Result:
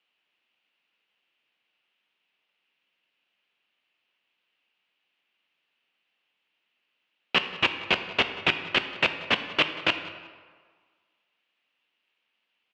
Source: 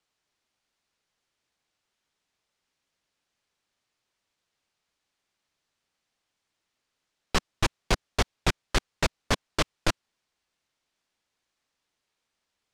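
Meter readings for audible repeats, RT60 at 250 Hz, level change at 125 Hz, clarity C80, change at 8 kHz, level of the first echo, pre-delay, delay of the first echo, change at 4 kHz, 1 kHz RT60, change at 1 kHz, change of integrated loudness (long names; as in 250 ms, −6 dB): 1, 1.4 s, −10.0 dB, 11.0 dB, −15.0 dB, −19.0 dB, 3 ms, 183 ms, +6.5 dB, 1.7 s, +1.0 dB, +4.0 dB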